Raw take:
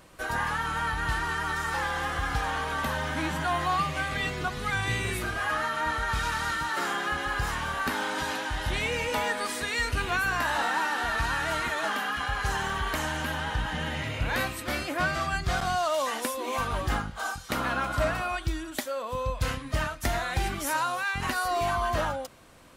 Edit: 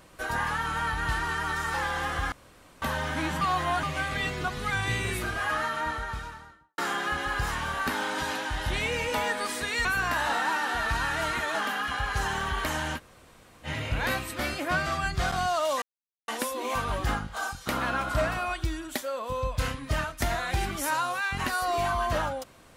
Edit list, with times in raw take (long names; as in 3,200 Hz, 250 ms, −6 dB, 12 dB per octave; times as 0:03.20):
0:02.32–0:02.82: fill with room tone
0:03.41–0:03.83: reverse
0:05.60–0:06.78: fade out and dull
0:09.85–0:10.14: remove
0:13.26–0:13.95: fill with room tone, crossfade 0.06 s
0:16.11: splice in silence 0.46 s